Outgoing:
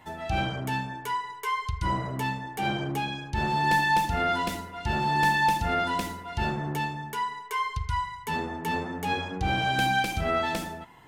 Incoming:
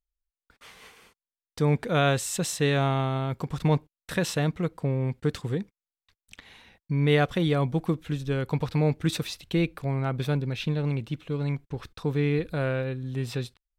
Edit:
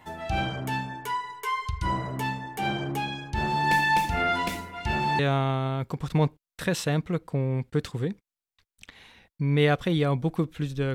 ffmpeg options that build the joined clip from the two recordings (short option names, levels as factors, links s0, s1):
-filter_complex "[0:a]asettb=1/sr,asplit=3[s0][s1][s2];[s0]atrim=end=3.704[s3];[s1]atrim=start=3.7:end=5.19,asetpts=PTS-STARTPTS,afade=t=in:d=0.004:c=qsin,afade=t=out:st=1.486:d=0.004:c=qsin,equalizer=f=2300:t=o:w=0.36:g=7[s4];[s2]atrim=start=5.186[s5];[s3][s4]acrossfade=d=0.004:c1=hsin:c2=qsin[s6];[s6][s5]acrossfade=d=0.004:c1=qsin:c2=hsin,apad=whole_dur=10.94,atrim=end=10.94,atrim=end=5.192[s7];[1:a]atrim=start=2.688:end=8.44[s8];[s7][s8]acrossfade=d=0.004:c1=hsin:c2=hsin"